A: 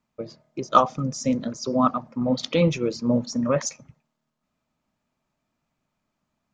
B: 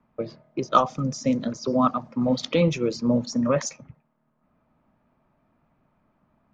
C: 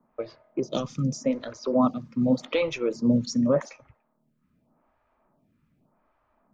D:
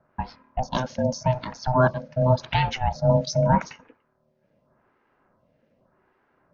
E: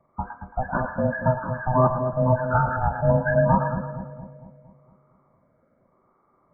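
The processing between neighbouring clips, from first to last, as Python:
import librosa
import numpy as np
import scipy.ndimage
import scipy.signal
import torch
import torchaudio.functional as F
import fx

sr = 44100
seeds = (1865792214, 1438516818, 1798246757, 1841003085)

y1 = fx.env_lowpass(x, sr, base_hz=1500.0, full_db=-20.5)
y1 = fx.band_squash(y1, sr, depth_pct=40)
y2 = fx.stagger_phaser(y1, sr, hz=0.85)
y2 = y2 * librosa.db_to_amplitude(1.5)
y3 = scipy.signal.sosfilt(scipy.signal.cheby1(6, 3, 6200.0, 'lowpass', fs=sr, output='sos'), y2)
y3 = y3 * np.sin(2.0 * np.pi * 380.0 * np.arange(len(y3)) / sr)
y3 = y3 * librosa.db_to_amplitude(8.0)
y4 = fx.freq_compress(y3, sr, knee_hz=1100.0, ratio=4.0)
y4 = fx.echo_split(y4, sr, split_hz=680.0, low_ms=230, high_ms=111, feedback_pct=52, wet_db=-7.5)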